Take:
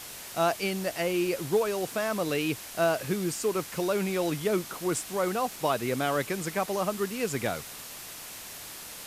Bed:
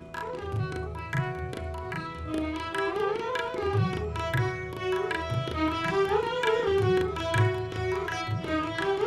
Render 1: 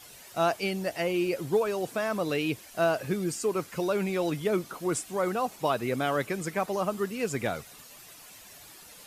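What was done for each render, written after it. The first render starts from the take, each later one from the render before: denoiser 11 dB, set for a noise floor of -43 dBFS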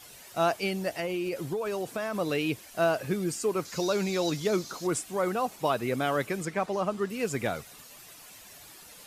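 0.91–2.15 compressor 10:1, threshold -27 dBFS; 3.65–4.87 band shelf 5200 Hz +10.5 dB 1.1 oct; 6.45–7.1 air absorption 51 m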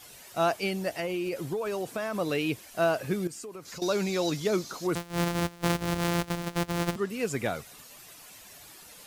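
3.27–3.82 compressor 8:1, threshold -38 dBFS; 4.95–6.96 sample sorter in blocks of 256 samples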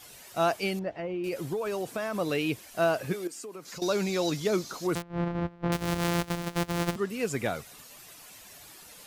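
0.79–1.24 tape spacing loss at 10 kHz 38 dB; 3.12–3.75 HPF 350 Hz -> 120 Hz 24 dB/oct; 5.02–5.72 tape spacing loss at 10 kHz 45 dB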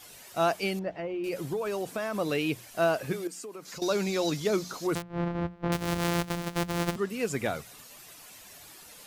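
notches 60/120/180 Hz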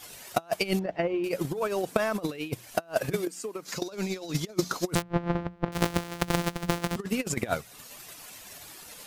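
negative-ratio compressor -32 dBFS, ratio -0.5; transient shaper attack +12 dB, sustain -5 dB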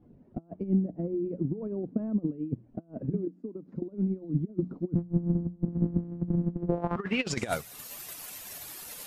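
soft clip -18.5 dBFS, distortion -14 dB; low-pass sweep 250 Hz -> 13000 Hz, 6.54–7.58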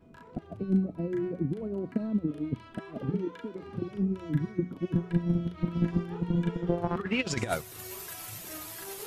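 add bed -17.5 dB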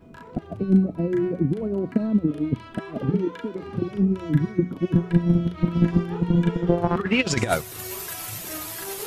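gain +8 dB

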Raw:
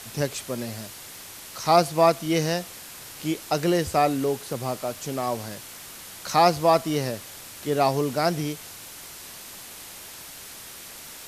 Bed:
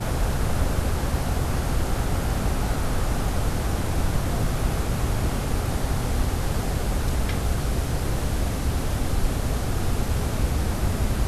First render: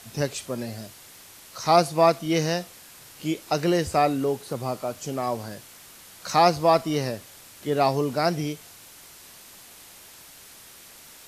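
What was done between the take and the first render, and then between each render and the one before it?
noise print and reduce 6 dB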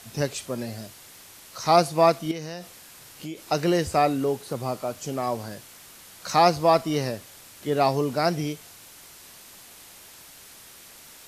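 2.31–3.41 compressor 4:1, threshold -32 dBFS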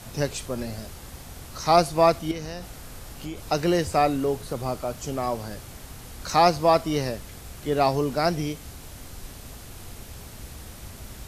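add bed -18 dB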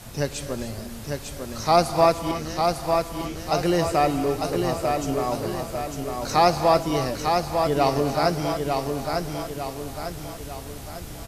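on a send: feedback echo 0.9 s, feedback 48%, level -4.5 dB; on the sum: non-linear reverb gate 0.32 s rising, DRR 9.5 dB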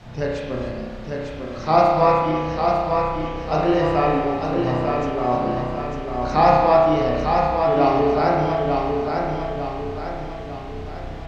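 air absorption 200 m; spring tank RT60 1.3 s, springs 32 ms, chirp 25 ms, DRR -3 dB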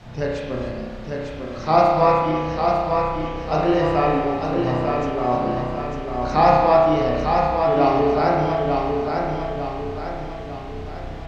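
nothing audible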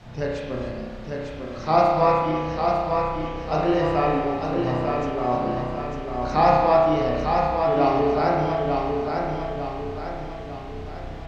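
gain -2.5 dB

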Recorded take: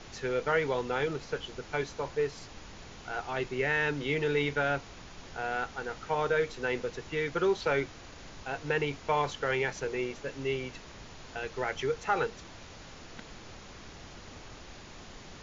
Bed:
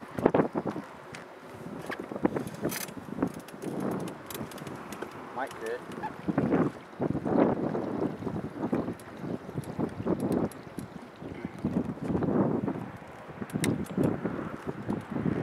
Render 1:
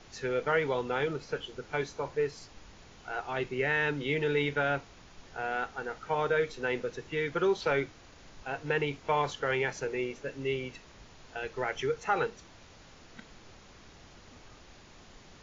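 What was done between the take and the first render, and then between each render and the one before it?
noise print and reduce 6 dB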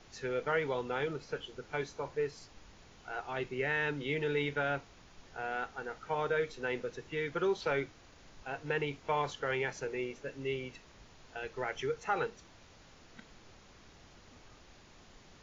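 gain -4 dB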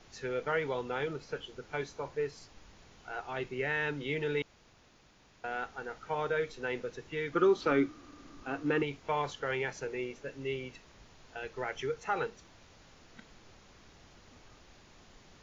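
4.42–5.44 room tone; 7.33–8.83 small resonant body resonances 290/1200 Hz, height 16 dB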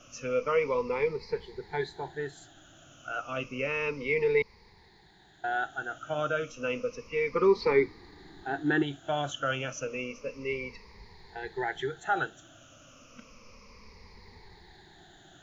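moving spectral ripple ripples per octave 0.88, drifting -0.31 Hz, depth 19 dB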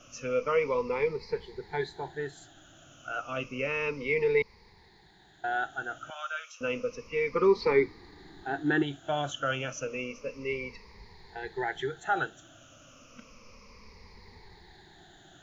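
6.1–6.61 Bessel high-pass 1300 Hz, order 8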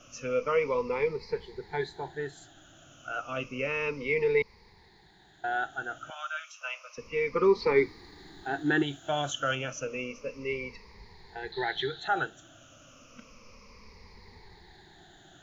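6.12–6.98 steep high-pass 610 Hz 96 dB/oct; 7.76–9.55 high shelf 3600 Hz +7.5 dB; 11.52–12.08 synth low-pass 4000 Hz, resonance Q 10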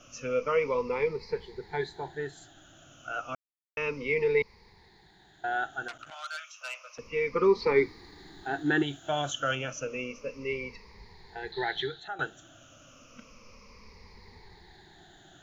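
3.35–3.77 mute; 5.88–6.99 core saturation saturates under 3600 Hz; 11.79–12.19 fade out, to -16.5 dB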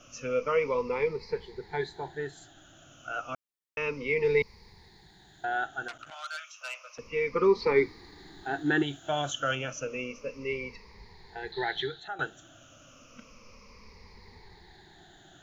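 4.24–5.45 tone controls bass +5 dB, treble +7 dB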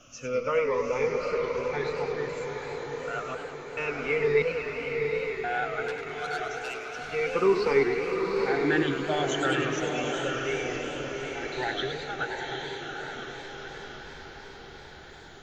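diffused feedback echo 0.82 s, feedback 56%, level -3.5 dB; warbling echo 0.104 s, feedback 68%, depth 217 cents, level -8 dB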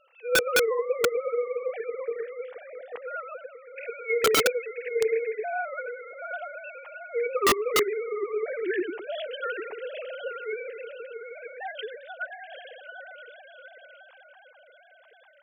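sine-wave speech; wrapped overs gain 15.5 dB

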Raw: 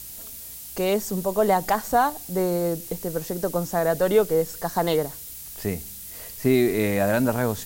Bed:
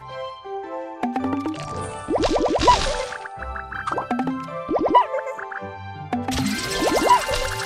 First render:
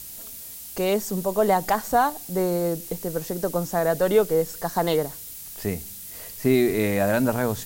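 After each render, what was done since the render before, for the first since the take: de-hum 60 Hz, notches 2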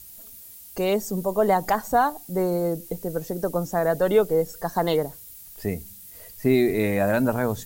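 denoiser 9 dB, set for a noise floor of -39 dBFS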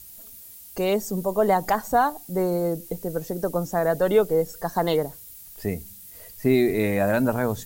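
nothing audible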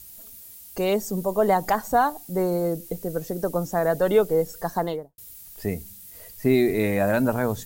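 2.65–3.36 notch 890 Hz, Q 8.1; 4.67–5.18 studio fade out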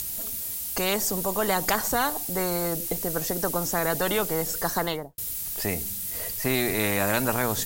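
upward compressor, threshold -43 dBFS; spectral compressor 2:1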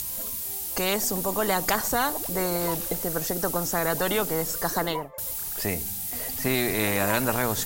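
add bed -20 dB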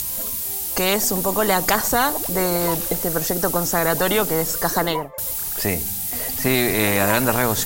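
gain +6 dB; limiter -3 dBFS, peak gain reduction 1 dB

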